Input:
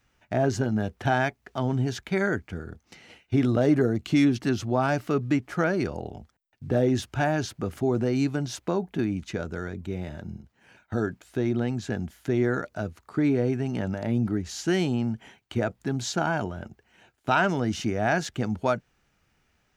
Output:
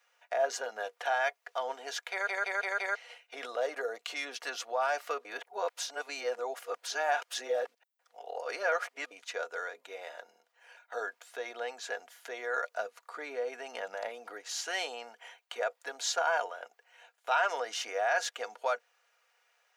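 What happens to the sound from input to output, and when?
2.1 stutter in place 0.17 s, 5 plays
5.25–9.11 reverse
12.71–14.09 bell 200 Hz +8 dB
whole clip: limiter -17 dBFS; elliptic high-pass 520 Hz, stop band 80 dB; comb 4.2 ms, depth 46%

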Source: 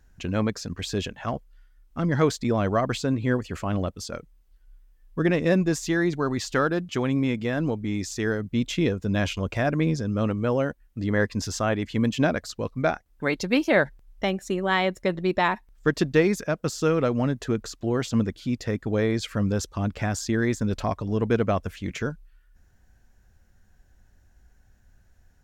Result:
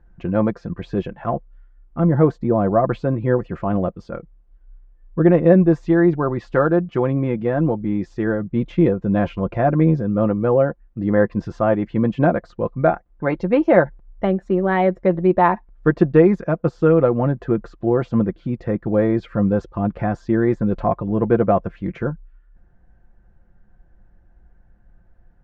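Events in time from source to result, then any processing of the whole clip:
2.11–2.84 bell 2700 Hz -7.5 dB 2 oct
whole clip: LPF 1200 Hz 12 dB/oct; comb 5.8 ms, depth 49%; dynamic EQ 680 Hz, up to +3 dB, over -31 dBFS, Q 0.94; gain +5 dB

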